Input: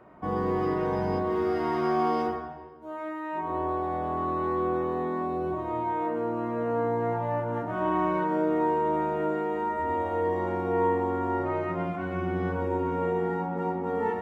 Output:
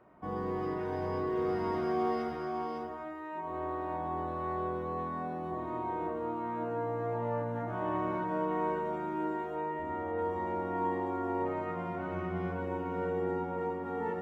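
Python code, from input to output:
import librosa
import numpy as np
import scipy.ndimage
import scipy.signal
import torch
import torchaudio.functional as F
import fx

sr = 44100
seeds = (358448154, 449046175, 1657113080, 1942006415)

y = fx.lowpass(x, sr, hz=fx.line((9.55, 3200.0), (10.17, 2200.0)), slope=12, at=(9.55, 10.17), fade=0.02)
y = y + 10.0 ** (-3.5 / 20.0) * np.pad(y, (int(559 * sr / 1000.0), 0))[:len(y)]
y = F.gain(torch.from_numpy(y), -7.5).numpy()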